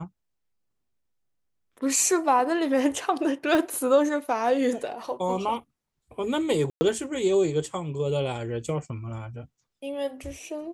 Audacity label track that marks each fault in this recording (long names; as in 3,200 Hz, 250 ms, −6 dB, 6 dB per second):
3.550000	3.550000	click −13 dBFS
6.700000	6.810000	drop-out 110 ms